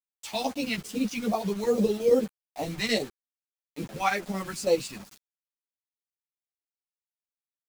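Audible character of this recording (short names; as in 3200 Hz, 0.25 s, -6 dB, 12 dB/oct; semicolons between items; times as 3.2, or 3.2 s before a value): chopped level 9 Hz, depth 60%, duty 75%; phasing stages 2, 2.4 Hz, lowest notch 470–1700 Hz; a quantiser's noise floor 8-bit, dither none; a shimmering, thickened sound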